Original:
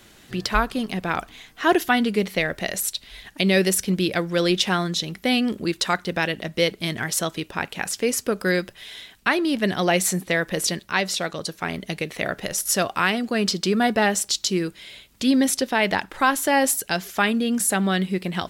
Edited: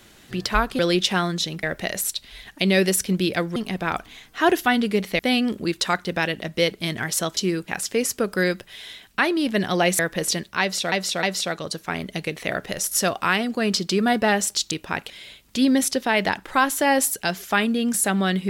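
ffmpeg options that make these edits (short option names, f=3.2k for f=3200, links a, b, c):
-filter_complex "[0:a]asplit=12[a][b][c][d][e][f][g][h][i][j][k][l];[a]atrim=end=0.792[m];[b]atrim=start=4.348:end=5.192[n];[c]atrim=start=2.418:end=4.352[o];[d]atrim=start=0.788:end=2.422[p];[e]atrim=start=5.188:end=7.372[q];[f]atrim=start=14.448:end=14.762[r];[g]atrim=start=7.758:end=10.072[s];[h]atrim=start=10.348:end=11.282[t];[i]atrim=start=10.968:end=11.282[u];[j]atrim=start=10.968:end=14.452[v];[k]atrim=start=7.368:end=7.762[w];[l]atrim=start=14.758[x];[m][n]acrossfade=d=0.004:c1=hsin:c2=hsin[y];[y][o]acrossfade=d=0.004:c1=hsin:c2=hsin[z];[z][p]acrossfade=d=0.004:c1=hsin:c2=hsin[aa];[aa][q]acrossfade=d=0.004:c1=hsin:c2=hsin[ab];[ab][r]acrossfade=d=0.004:c1=hsin:c2=hsin[ac];[ac][s]acrossfade=d=0.004:c1=hsin:c2=hsin[ad];[ad][t]acrossfade=d=0.004:c1=hsin:c2=hsin[ae];[ae][u]acrossfade=d=0.004:c1=hsin:c2=hsin[af];[af][v]acrossfade=d=0.004:c1=hsin:c2=hsin[ag];[ag][w]acrossfade=d=0.004:c1=hsin:c2=hsin[ah];[ah][x]acrossfade=d=0.004:c1=hsin:c2=hsin"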